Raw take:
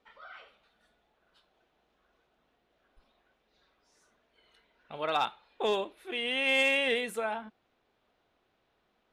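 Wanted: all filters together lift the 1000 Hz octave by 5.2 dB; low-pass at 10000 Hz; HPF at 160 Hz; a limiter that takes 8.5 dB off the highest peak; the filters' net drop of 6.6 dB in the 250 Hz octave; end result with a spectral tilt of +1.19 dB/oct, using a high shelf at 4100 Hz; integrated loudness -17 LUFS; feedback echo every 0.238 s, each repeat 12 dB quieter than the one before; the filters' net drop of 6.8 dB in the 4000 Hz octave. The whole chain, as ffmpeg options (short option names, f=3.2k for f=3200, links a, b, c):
-af "highpass=160,lowpass=10k,equalizer=f=250:t=o:g=-7.5,equalizer=f=1k:t=o:g=8,equalizer=f=4k:t=o:g=-9,highshelf=f=4.1k:g=-3,alimiter=limit=-22.5dB:level=0:latency=1,aecho=1:1:238|476|714:0.251|0.0628|0.0157,volume=16dB"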